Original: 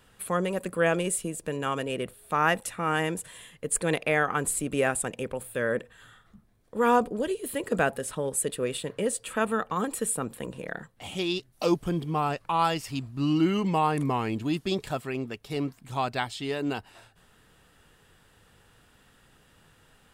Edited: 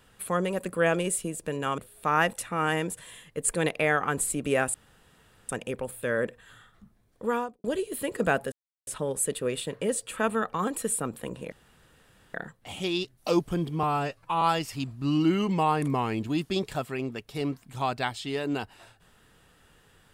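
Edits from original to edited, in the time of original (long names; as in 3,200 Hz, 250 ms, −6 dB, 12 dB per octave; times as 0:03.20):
0:01.78–0:02.05: remove
0:05.01: splice in room tone 0.75 s
0:06.76–0:07.16: fade out quadratic
0:08.04: splice in silence 0.35 s
0:10.69: splice in room tone 0.82 s
0:12.18–0:12.57: time-stretch 1.5×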